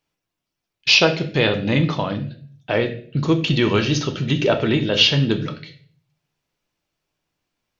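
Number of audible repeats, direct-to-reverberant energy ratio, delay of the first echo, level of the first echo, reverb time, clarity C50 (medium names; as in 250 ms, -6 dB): no echo, 5.0 dB, no echo, no echo, 0.50 s, 12.5 dB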